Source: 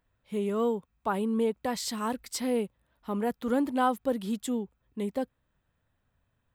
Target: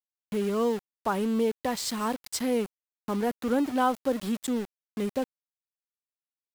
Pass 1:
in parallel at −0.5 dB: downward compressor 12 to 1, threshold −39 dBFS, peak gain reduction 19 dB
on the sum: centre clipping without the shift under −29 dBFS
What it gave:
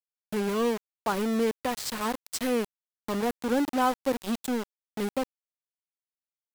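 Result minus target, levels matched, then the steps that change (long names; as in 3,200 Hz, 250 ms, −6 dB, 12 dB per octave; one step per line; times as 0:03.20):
centre clipping without the shift: distortion +9 dB
change: centre clipping without the shift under −35.5 dBFS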